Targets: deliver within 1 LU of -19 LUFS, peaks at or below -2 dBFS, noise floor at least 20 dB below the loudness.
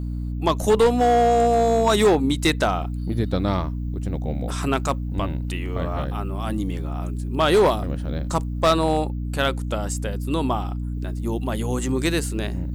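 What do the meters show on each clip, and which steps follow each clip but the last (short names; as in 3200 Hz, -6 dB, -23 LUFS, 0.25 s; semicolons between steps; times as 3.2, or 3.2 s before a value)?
clipped 1.0%; flat tops at -11.5 dBFS; hum 60 Hz; harmonics up to 300 Hz; hum level -25 dBFS; loudness -22.5 LUFS; peak -11.5 dBFS; loudness target -19.0 LUFS
-> clip repair -11.5 dBFS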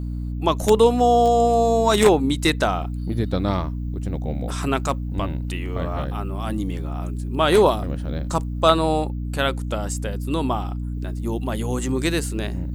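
clipped 0.0%; hum 60 Hz; harmonics up to 300 Hz; hum level -25 dBFS
-> notches 60/120/180/240/300 Hz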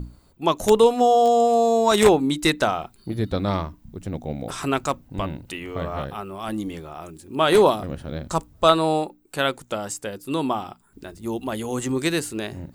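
hum none; loudness -22.5 LUFS; peak -2.5 dBFS; loudness target -19.0 LUFS
-> gain +3.5 dB; limiter -2 dBFS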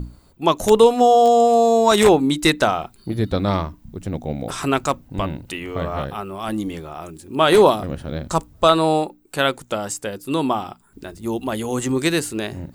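loudness -19.0 LUFS; peak -2.0 dBFS; noise floor -52 dBFS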